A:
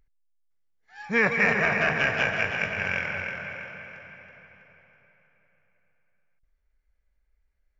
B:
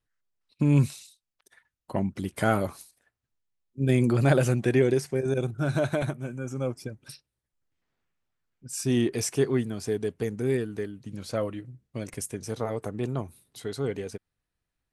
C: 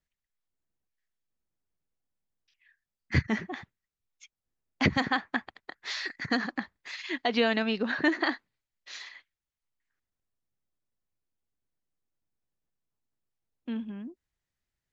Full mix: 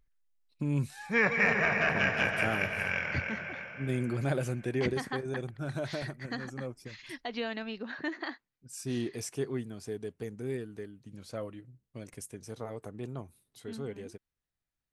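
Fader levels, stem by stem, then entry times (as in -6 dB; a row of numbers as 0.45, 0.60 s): -4.0, -9.5, -10.0 dB; 0.00, 0.00, 0.00 s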